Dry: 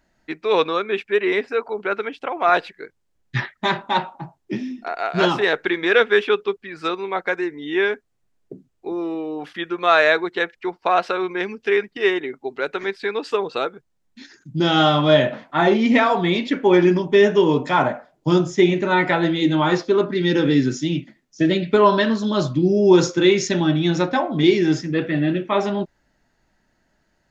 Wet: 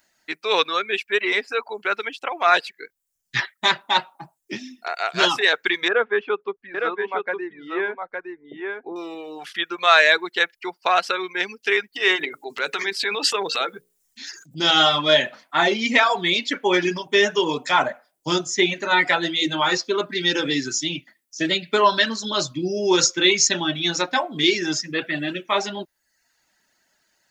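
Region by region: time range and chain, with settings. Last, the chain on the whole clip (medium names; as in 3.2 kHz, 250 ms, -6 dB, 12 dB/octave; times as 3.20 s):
5.88–8.96 s: low-pass 1.2 kHz + delay 862 ms -5 dB
11.93–14.71 s: transient shaper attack -1 dB, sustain +10 dB + hum notches 60/120/180/240/300/360/420/480/540 Hz
whole clip: reverb removal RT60 0.65 s; tilt EQ +4 dB/octave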